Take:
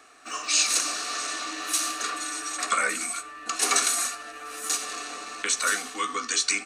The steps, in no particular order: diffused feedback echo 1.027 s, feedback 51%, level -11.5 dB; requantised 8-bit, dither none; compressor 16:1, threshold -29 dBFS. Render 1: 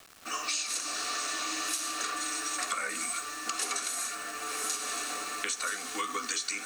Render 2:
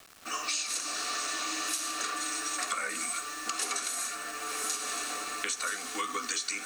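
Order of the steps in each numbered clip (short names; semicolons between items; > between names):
requantised > diffused feedback echo > compressor; diffused feedback echo > requantised > compressor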